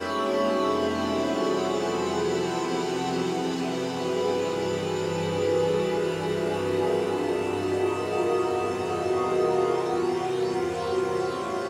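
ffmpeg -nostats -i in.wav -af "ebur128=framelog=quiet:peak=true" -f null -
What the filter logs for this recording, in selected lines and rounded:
Integrated loudness:
  I:         -26.4 LUFS
  Threshold: -36.4 LUFS
Loudness range:
  LRA:         1.3 LU
  Threshold: -46.4 LUFS
  LRA low:   -27.2 LUFS
  LRA high:  -25.9 LUFS
True peak:
  Peak:      -13.0 dBFS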